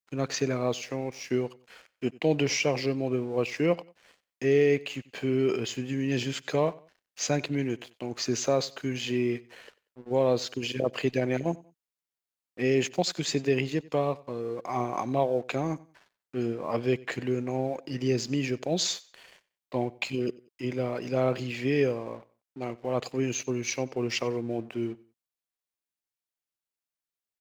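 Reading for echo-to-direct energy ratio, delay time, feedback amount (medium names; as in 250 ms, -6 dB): -21.5 dB, 93 ms, 32%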